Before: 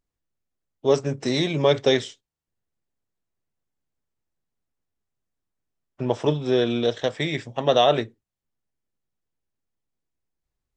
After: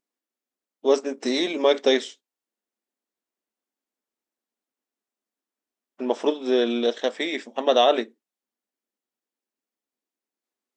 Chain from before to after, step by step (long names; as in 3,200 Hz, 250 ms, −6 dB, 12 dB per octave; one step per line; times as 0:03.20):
linear-phase brick-wall high-pass 200 Hz